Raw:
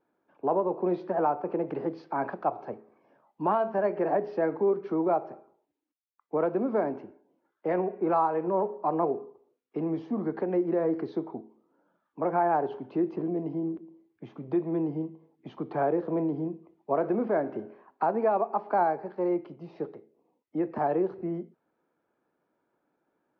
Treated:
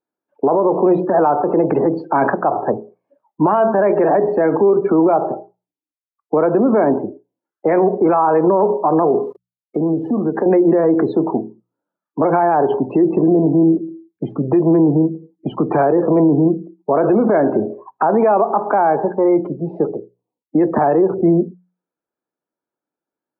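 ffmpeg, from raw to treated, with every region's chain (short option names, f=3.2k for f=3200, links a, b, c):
-filter_complex "[0:a]asettb=1/sr,asplit=3[a][b][c];[a]atrim=end=9.224[d];[b]atrim=start=9.22:end=10.46,asetpts=PTS-STARTPTS,afade=t=in:d=0.004:c=qsin,afade=t=out:st=1.236:d=0.004:c=qsin,aeval=exprs='val(0)*gte(abs(val(0)),0.00251)':c=same,acompressor=threshold=-39dB:ratio=2.5:attack=3.2:release=140:knee=1:detection=peak[e];[c]atrim=start=10.456[f];[d][e]acrossfade=d=0.004:c1=hsin:c2=qsin[g];[g][f]acrossfade=d=0.004:c1=qsin:c2=hsin,afftdn=nr=33:nf=-48,bandreject=f=60:t=h:w=6,bandreject=f=120:t=h:w=6,bandreject=f=180:t=h:w=6,alimiter=level_in=26.5dB:limit=-1dB:release=50:level=0:latency=1,volume=-5.5dB"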